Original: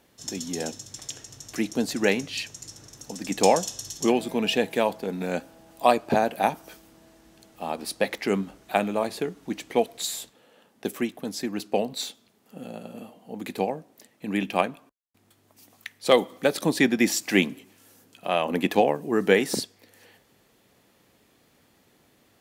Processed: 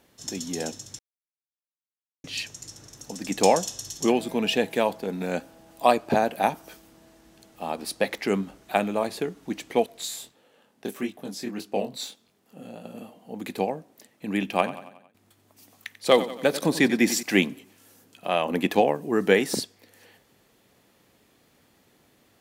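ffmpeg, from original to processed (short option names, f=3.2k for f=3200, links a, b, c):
-filter_complex "[0:a]asettb=1/sr,asplit=3[a][b][c];[a]atrim=end=9.864[d];[b]atrim=start=9.86:end=12.85,asetpts=PTS-STARTPTS,afade=t=in:d=0.004:c=qsin,afade=t=out:st=2.986:d=0.004:c=qsin,flanger=delay=20:depth=6.3:speed=1.6[e];[c]atrim=start=12.846[f];[d][e]acrossfade=d=0.004:c1=hsin:c2=qsin[g];[g][f]acrossfade=d=0.004:c1=qsin:c2=hsin,asettb=1/sr,asplit=3[h][i][j];[h]atrim=end=14.474[k];[i]atrim=start=14.47:end=17.23,asetpts=PTS-STARTPTS,afade=t=in:d=0.004:c=qsin,afade=t=out:st=2.756:d=0.004:c=qsin,aecho=1:1:91|182|273|364|455:0.2|0.104|0.054|0.0281|0.0146,atrim=end_sample=121716[l];[j]atrim=start=17.226[m];[k][l]acrossfade=d=0.004:c1=hsin:c2=qsin[n];[n][m]acrossfade=d=0.004:c1=qsin:c2=hsin,asplit=3[o][p][q];[o]atrim=end=0.99,asetpts=PTS-STARTPTS,afade=t=out:st=0.986:d=0.004:c=hsin[r];[p]atrim=start=0.99:end=2.24,asetpts=PTS-STARTPTS,volume=0[s];[q]atrim=start=2.24,asetpts=PTS-STARTPTS,afade=t=in:d=0.004:c=hsin[t];[r][s][t]concat=n=3:v=0:a=1"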